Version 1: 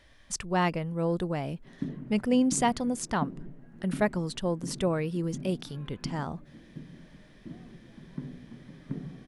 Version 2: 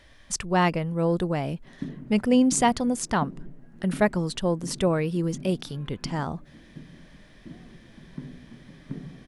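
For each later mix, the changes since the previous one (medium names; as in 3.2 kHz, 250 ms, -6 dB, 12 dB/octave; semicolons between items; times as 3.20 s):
speech +4.5 dB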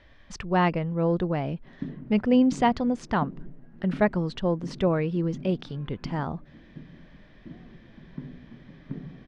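master: add distance through air 210 m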